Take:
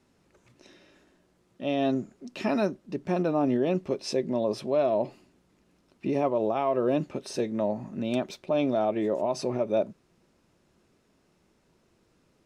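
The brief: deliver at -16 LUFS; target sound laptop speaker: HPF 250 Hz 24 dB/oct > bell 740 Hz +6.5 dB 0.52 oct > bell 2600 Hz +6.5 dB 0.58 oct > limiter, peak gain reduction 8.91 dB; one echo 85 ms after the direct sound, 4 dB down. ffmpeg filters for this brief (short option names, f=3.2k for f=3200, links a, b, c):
-af "highpass=f=250:w=0.5412,highpass=f=250:w=1.3066,equalizer=f=740:t=o:w=0.52:g=6.5,equalizer=f=2.6k:t=o:w=0.58:g=6.5,aecho=1:1:85:0.631,volume=12.5dB,alimiter=limit=-6dB:level=0:latency=1"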